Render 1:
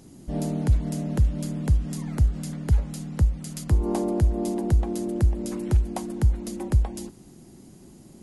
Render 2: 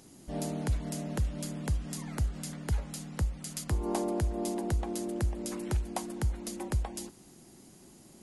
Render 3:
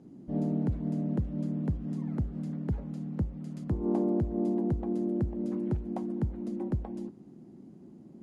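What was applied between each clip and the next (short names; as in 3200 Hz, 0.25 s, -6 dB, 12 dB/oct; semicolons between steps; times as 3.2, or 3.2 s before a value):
low shelf 420 Hz -10.5 dB
band-pass 220 Hz, Q 1.3; gain +8 dB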